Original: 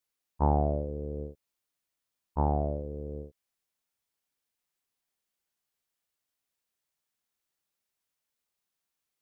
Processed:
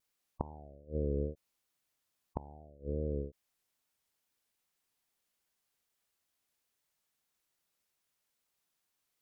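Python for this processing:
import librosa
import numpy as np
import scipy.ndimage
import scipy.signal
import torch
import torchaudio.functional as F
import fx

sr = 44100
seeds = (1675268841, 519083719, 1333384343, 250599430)

y = fx.spec_gate(x, sr, threshold_db=-25, keep='strong')
y = fx.vibrato(y, sr, rate_hz=2.4, depth_cents=66.0)
y = fx.gate_flip(y, sr, shuts_db=-23.0, range_db=-28)
y = F.gain(torch.from_numpy(y), 3.0).numpy()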